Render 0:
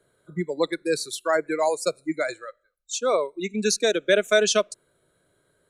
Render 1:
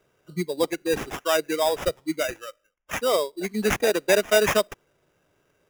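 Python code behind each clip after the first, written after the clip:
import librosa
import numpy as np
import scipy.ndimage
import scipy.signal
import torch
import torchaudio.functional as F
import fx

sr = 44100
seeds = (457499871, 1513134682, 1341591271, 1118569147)

y = fx.sample_hold(x, sr, seeds[0], rate_hz=4300.0, jitter_pct=0)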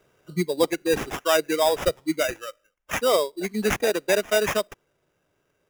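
y = fx.rider(x, sr, range_db=4, speed_s=2.0)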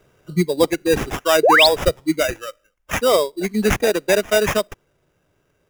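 y = fx.low_shelf(x, sr, hz=160.0, db=8.5)
y = fx.spec_paint(y, sr, seeds[1], shape='rise', start_s=1.43, length_s=0.24, low_hz=390.0, high_hz=5000.0, level_db=-16.0)
y = y * librosa.db_to_amplitude(4.0)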